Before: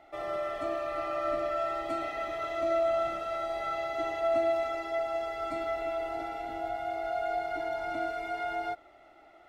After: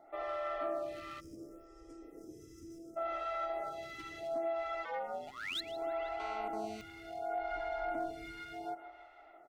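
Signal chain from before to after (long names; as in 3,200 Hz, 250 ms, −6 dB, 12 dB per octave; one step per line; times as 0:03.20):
0:05.27–0:05.61: sound drawn into the spectrogram rise 710–4,300 Hz −27 dBFS
downward compressor 3 to 1, threshold −31 dBFS, peak gain reduction 6 dB
repeating echo 160 ms, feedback 57%, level −14 dB
gain into a clipping stage and back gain 28 dB
0:01.20–0:02.97: gain on a spectral selection 530–4,800 Hz −26 dB
0:04.84–0:05.54: ring modulation 190 Hz → 41 Hz
0:06.20–0:06.81: phone interference −41 dBFS
0:07.39–0:08.37: low-shelf EQ 110 Hz +10.5 dB
phaser with staggered stages 0.69 Hz
level −1.5 dB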